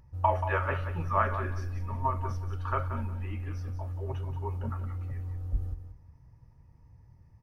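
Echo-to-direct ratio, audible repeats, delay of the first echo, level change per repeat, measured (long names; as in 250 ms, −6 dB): −10.0 dB, 2, 181 ms, −14.0 dB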